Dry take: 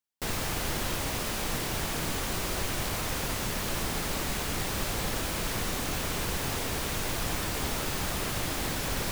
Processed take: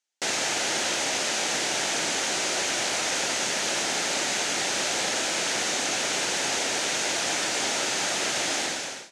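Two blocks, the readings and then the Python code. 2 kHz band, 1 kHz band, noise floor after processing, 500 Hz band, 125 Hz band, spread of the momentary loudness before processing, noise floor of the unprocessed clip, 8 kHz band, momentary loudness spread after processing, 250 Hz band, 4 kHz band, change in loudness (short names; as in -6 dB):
+7.5 dB, +4.5 dB, -34 dBFS, +4.5 dB, -12.5 dB, 0 LU, -33 dBFS, +9.0 dB, 0 LU, -1.0 dB, +8.5 dB, +6.0 dB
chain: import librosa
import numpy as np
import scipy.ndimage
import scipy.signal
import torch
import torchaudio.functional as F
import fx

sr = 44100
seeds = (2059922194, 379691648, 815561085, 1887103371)

y = fx.fade_out_tail(x, sr, length_s=0.55)
y = fx.cabinet(y, sr, low_hz=420.0, low_slope=12, high_hz=8300.0, hz=(450.0, 1100.0, 6400.0), db=(-4, -10, 5))
y = y * librosa.db_to_amplitude(8.5)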